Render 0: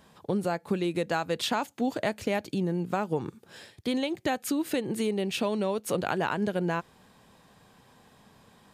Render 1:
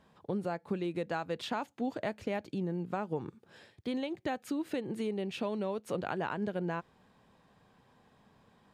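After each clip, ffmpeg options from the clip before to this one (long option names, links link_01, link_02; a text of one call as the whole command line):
ffmpeg -i in.wav -af "lowpass=frequency=2700:poles=1,volume=-6dB" out.wav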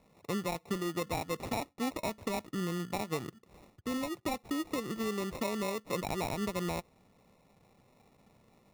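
ffmpeg -i in.wav -af "acrusher=samples=28:mix=1:aa=0.000001" out.wav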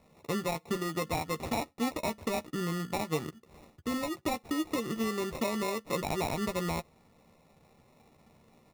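ffmpeg -i in.wav -filter_complex "[0:a]asplit=2[link_01][link_02];[link_02]adelay=13,volume=-8dB[link_03];[link_01][link_03]amix=inputs=2:normalize=0,volume=2dB" out.wav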